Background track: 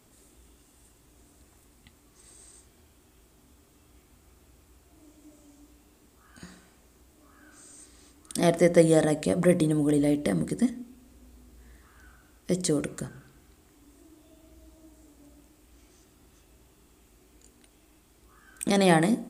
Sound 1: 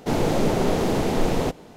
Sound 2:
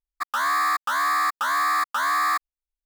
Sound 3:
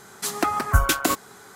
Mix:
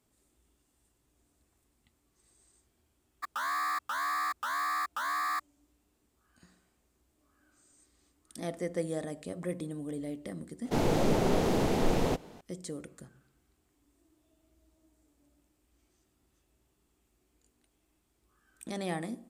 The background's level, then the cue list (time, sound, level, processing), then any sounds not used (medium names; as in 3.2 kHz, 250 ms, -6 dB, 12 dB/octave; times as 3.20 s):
background track -14.5 dB
3.02 s: add 2 -10 dB
10.65 s: add 1 -5.5 dB
not used: 3